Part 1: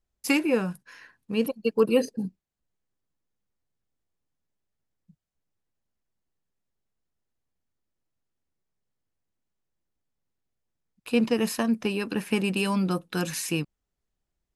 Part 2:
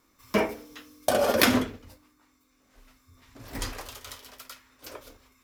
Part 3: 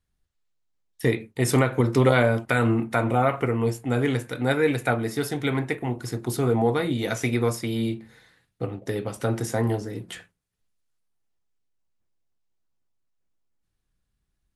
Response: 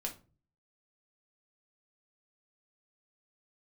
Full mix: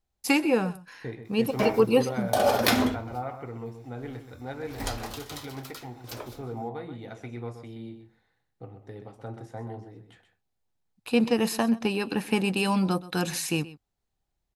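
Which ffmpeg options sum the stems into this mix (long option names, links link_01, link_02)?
-filter_complex "[0:a]volume=0dB,asplit=2[link_01][link_02];[link_02]volume=-18dB[link_03];[1:a]adelay=1250,volume=1dB,asplit=2[link_04][link_05];[link_05]volume=-9dB[link_06];[2:a]lowpass=frequency=1800:poles=1,volume=-15dB,asplit=3[link_07][link_08][link_09];[link_08]volume=-9.5dB[link_10];[link_09]apad=whole_len=294915[link_11];[link_04][link_11]sidechaincompress=threshold=-42dB:ratio=8:attack=16:release=294[link_12];[3:a]atrim=start_sample=2205[link_13];[link_06][link_13]afir=irnorm=-1:irlink=0[link_14];[link_03][link_10]amix=inputs=2:normalize=0,aecho=0:1:127:1[link_15];[link_01][link_12][link_07][link_14][link_15]amix=inputs=5:normalize=0,equalizer=frequency=100:width_type=o:width=0.33:gain=5,equalizer=frequency=800:width_type=o:width=0.33:gain=8,equalizer=frequency=4000:width_type=o:width=0.33:gain=4"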